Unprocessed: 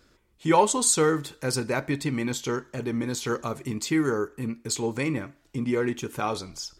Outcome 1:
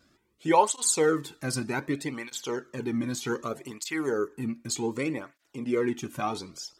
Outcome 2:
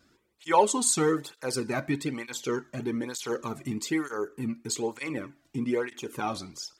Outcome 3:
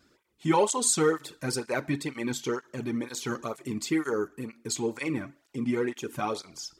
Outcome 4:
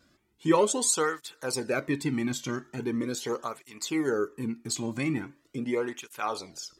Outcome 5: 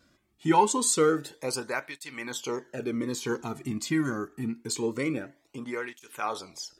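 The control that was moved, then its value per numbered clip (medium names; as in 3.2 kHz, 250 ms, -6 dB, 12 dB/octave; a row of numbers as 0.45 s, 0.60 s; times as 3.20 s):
cancelling through-zero flanger, nulls at: 0.65 Hz, 1.1 Hz, 2.1 Hz, 0.41 Hz, 0.25 Hz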